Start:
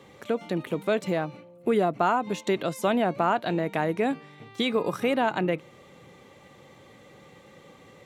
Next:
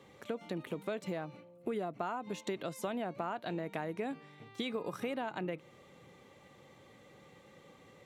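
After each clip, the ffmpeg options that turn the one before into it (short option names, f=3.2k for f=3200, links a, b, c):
-af "acompressor=threshold=-27dB:ratio=4,volume=-7dB"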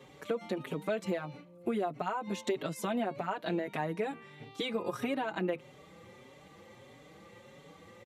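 -filter_complex "[0:a]aresample=32000,aresample=44100,asplit=2[a][b];[b]adelay=5.1,afreqshift=1.6[c];[a][c]amix=inputs=2:normalize=1,volume=7dB"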